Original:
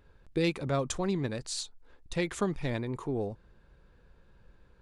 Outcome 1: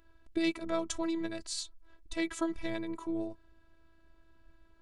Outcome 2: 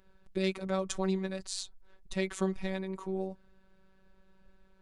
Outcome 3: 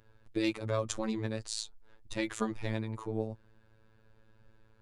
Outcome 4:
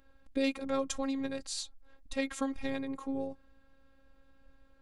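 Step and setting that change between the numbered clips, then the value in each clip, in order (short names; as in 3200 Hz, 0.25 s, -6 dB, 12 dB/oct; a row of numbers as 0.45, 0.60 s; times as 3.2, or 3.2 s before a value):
robotiser, frequency: 330, 190, 110, 270 Hz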